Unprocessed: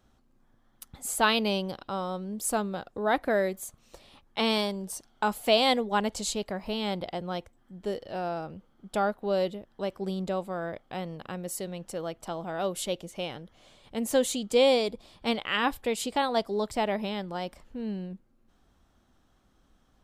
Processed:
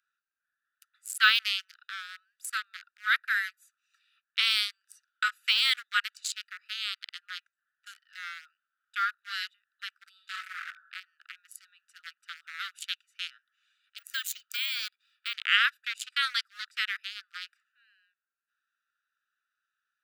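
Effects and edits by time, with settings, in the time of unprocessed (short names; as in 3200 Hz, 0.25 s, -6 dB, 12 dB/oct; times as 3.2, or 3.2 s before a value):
10.1–10.64 reverb throw, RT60 1 s, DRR 0.5 dB
13.98–15.34 careless resampling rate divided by 2×, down none, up hold
whole clip: Wiener smoothing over 41 samples; steep high-pass 1300 Hz 96 dB/oct; de-esser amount 75%; gain +9 dB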